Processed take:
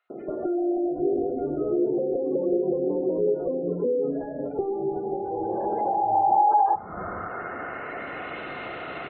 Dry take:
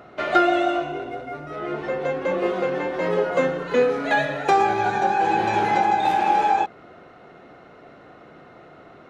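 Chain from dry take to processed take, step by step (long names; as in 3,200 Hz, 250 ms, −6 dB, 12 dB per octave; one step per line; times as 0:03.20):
high-shelf EQ 2,000 Hz +11.5 dB
three-band delay without the direct sound highs, mids, lows 100/620 ms, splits 170/2,300 Hz
downward compressor 10 to 1, threshold −31 dBFS, peak gain reduction 20.5 dB
gain into a clipping stage and back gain 29.5 dB
low-pass filter sweep 380 Hz → 2,600 Hz, 0:05.02–0:08.41
gate on every frequency bin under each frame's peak −30 dB strong
four-comb reverb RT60 0.47 s, combs from 26 ms, DRR 17 dB
level +8.5 dB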